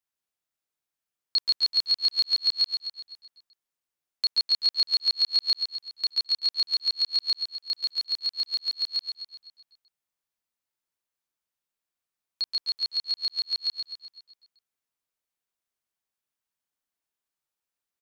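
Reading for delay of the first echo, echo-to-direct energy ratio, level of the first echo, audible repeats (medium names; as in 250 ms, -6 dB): 127 ms, -5.5 dB, -7.0 dB, 6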